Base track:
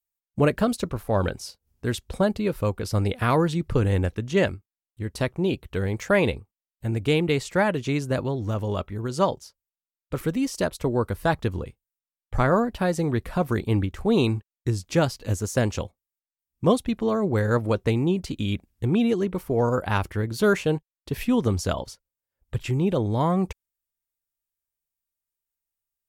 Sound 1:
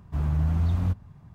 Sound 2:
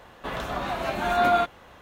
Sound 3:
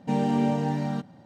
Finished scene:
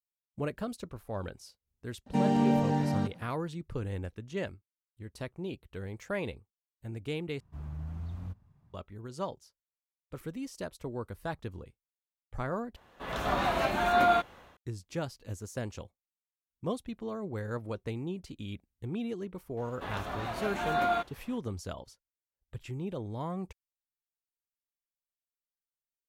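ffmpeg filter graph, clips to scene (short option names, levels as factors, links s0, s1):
-filter_complex "[2:a]asplit=2[s0][s1];[0:a]volume=0.2[s2];[s0]dynaudnorm=f=270:g=3:m=6.31[s3];[s2]asplit=3[s4][s5][s6];[s4]atrim=end=7.404[s7];[1:a]atrim=end=1.34,asetpts=PTS-STARTPTS,volume=0.178[s8];[s5]atrim=start=8.736:end=12.764[s9];[s3]atrim=end=1.81,asetpts=PTS-STARTPTS,volume=0.237[s10];[s6]atrim=start=14.566[s11];[3:a]atrim=end=1.25,asetpts=PTS-STARTPTS,volume=0.841,afade=t=in:d=0.004:c=hsin,afade=t=out:st=1.246:d=0.004:c=hsin,adelay=2060[s12];[s1]atrim=end=1.81,asetpts=PTS-STARTPTS,volume=0.422,afade=t=in:d=0.004:c=hsin,afade=t=out:st=1.806:d=0.004:c=hsin,adelay=19570[s13];[s7][s8]acrossfade=d=0.004:c1=hsin:c2=hsin[s14];[s14][s9]acrossfade=d=0.004:c1=hsin:c2=hsin[s15];[s15][s10]acrossfade=d=0.004:c1=hsin:c2=hsin[s16];[s16][s11]acrossfade=d=0.004:c1=hsin:c2=hsin[s17];[s17][s12][s13]amix=inputs=3:normalize=0"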